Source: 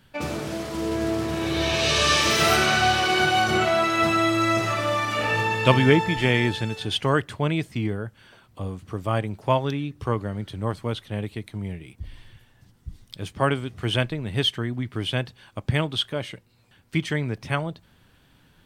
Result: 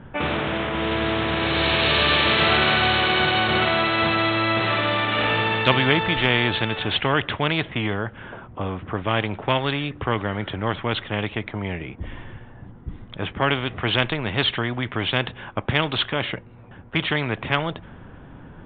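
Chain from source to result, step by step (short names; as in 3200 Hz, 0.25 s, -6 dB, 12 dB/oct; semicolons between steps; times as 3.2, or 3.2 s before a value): downsampling 8000 Hz; low-pass opened by the level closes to 1100 Hz, open at -16.5 dBFS; spectral compressor 2:1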